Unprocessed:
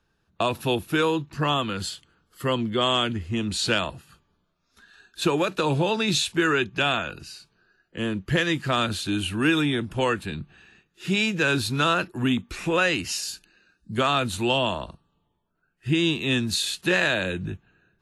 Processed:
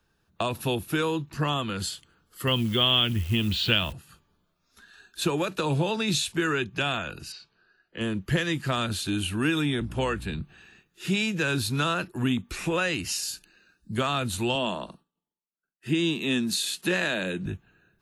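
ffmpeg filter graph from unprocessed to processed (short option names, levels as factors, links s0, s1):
-filter_complex "[0:a]asettb=1/sr,asplit=3[s0][s1][s2];[s0]atrim=end=2.474[s3];[s1]atrim=start=2.47:end=3.93,asetpts=PTS-STARTPTS,afade=t=in:d=0.004:c=qsin,afade=t=out:st=1.456:d=0.004:c=qsin,lowpass=f=3100:t=q:w=4.1,equalizer=f=66:w=0.47:g=6.5,acrusher=bits=8:dc=4:mix=0:aa=0.000001[s4];[s2]atrim=start=3.926[s5];[s3][s4]acrossfade=d=0.004:c1=hsin:c2=qsin[s6];[s6][s5]acrossfade=d=0.004:c1=qsin:c2=hsin,asettb=1/sr,asplit=3[s7][s8][s9];[s7]atrim=end=7.324[s10];[s8]atrim=start=7.32:end=8.01,asetpts=PTS-STARTPTS,afade=t=in:d=0.004:c=qsin,afade=t=out:st=0.686:d=0.004:c=qsin,lowpass=f=5100:w=0.5412,lowpass=f=5100:w=1.3066,lowshelf=f=330:g=-7[s11];[s9]atrim=start=8.006[s12];[s10][s11]acrossfade=d=0.004:c1=hsin:c2=qsin[s13];[s13][s12]acrossfade=d=0.004:c1=qsin:c2=hsin,asettb=1/sr,asplit=3[s14][s15][s16];[s14]atrim=end=9.804[s17];[s15]atrim=start=9.8:end=10.41,asetpts=PTS-STARTPTS,afade=t=in:d=0.004:c=qsin,afade=t=out:st=0.606:d=0.004:c=qsin,highpass=47,highshelf=f=7900:g=-4.5,aeval=exprs='val(0)+0.0126*(sin(2*PI*60*n/s)+sin(2*PI*2*60*n/s)/2+sin(2*PI*3*60*n/s)/3+sin(2*PI*4*60*n/s)/4+sin(2*PI*5*60*n/s)/5)':c=same[s18];[s16]atrim=start=10.406[s19];[s17][s18]acrossfade=d=0.004:c1=hsin:c2=qsin[s20];[s20][s19]acrossfade=d=0.004:c1=qsin:c2=hsin,asettb=1/sr,asplit=3[s21][s22][s23];[s21]atrim=end=14.554[s24];[s22]atrim=start=14.55:end=17.46,asetpts=PTS-STARTPTS,afade=t=in:d=0.004:c=qsin,afade=t=out:st=2.906:d=0.004:c=qsin,agate=range=0.0224:threshold=0.001:ratio=3:release=100:detection=peak,lowshelf=f=140:t=q:w=1.5:g=-12[s25];[s23]atrim=start=17.456[s26];[s24][s25]acrossfade=d=0.004:c1=hsin:c2=qsin[s27];[s27][s26]acrossfade=d=0.004:c1=qsin:c2=hsin,highshelf=f=10000:g=9.5,acrossover=split=200[s28][s29];[s29]acompressor=threshold=0.0251:ratio=1.5[s30];[s28][s30]amix=inputs=2:normalize=0"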